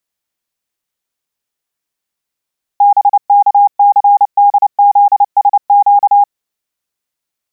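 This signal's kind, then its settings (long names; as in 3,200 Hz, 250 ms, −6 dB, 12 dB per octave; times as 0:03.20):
Morse code "BKCDZSQ" 29 words per minute 813 Hz −3.5 dBFS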